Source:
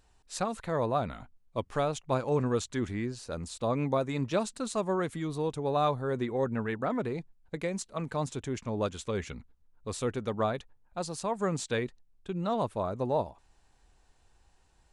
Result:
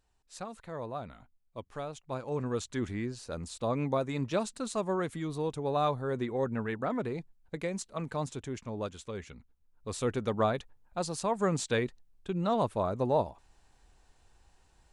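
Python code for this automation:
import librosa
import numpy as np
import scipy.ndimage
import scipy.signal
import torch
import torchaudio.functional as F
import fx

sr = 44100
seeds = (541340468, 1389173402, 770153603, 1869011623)

y = fx.gain(x, sr, db=fx.line((1.99, -9.5), (2.79, -1.5), (8.09, -1.5), (9.34, -8.0), (10.14, 1.5)))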